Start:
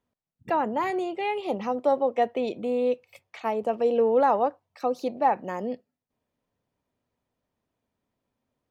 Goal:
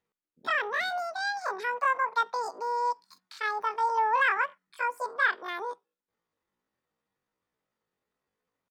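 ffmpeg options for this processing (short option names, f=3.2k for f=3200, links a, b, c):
-af "asetrate=85689,aresample=44100,atempo=0.514651,equalizer=f=2.2k:w=0.64:g=3,volume=-5dB"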